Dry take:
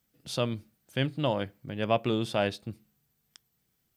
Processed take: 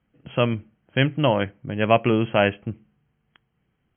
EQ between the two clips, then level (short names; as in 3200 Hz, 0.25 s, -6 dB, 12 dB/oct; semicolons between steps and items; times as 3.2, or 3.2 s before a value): dynamic EQ 2300 Hz, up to +7 dB, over -46 dBFS, Q 0.94; brick-wall FIR low-pass 3300 Hz; air absorption 290 m; +8.5 dB